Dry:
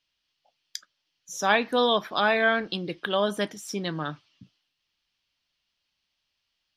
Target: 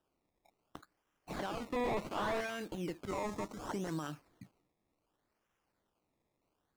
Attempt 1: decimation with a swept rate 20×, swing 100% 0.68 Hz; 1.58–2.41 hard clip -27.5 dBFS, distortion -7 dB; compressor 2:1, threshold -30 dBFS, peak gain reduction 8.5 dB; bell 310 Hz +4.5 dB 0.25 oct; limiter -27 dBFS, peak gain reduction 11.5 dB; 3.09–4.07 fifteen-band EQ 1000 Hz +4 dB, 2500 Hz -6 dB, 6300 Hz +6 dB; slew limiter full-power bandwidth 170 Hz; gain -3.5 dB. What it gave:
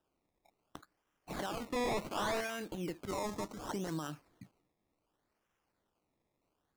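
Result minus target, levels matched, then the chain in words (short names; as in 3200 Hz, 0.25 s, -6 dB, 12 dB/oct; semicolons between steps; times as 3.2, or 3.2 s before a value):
slew limiter: distortion -7 dB
decimation with a swept rate 20×, swing 100% 0.68 Hz; 1.58–2.41 hard clip -27.5 dBFS, distortion -7 dB; compressor 2:1, threshold -30 dBFS, peak gain reduction 8.5 dB; bell 310 Hz +4.5 dB 0.25 oct; limiter -27 dBFS, peak gain reduction 11.5 dB; 3.09–4.07 fifteen-band EQ 1000 Hz +4 dB, 2500 Hz -6 dB, 6300 Hz +6 dB; slew limiter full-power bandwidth 62 Hz; gain -3.5 dB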